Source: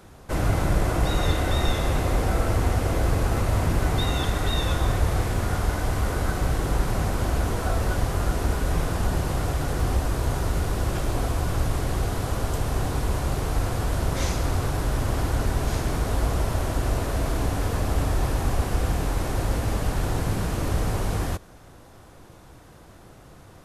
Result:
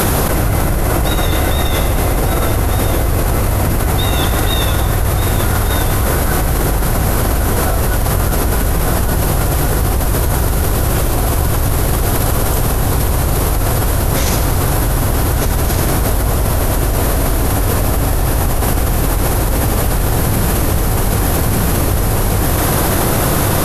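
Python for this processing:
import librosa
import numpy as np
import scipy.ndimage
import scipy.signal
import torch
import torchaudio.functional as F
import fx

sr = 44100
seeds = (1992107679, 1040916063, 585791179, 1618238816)

y = fx.peak_eq(x, sr, hz=12000.0, db=13.0, octaves=0.53)
y = y + 10.0 ** (-9.5 / 20.0) * np.pad(y, (int(1194 * sr / 1000.0), 0))[:len(y)]
y = fx.env_flatten(y, sr, amount_pct=100)
y = y * librosa.db_to_amplitude(3.0)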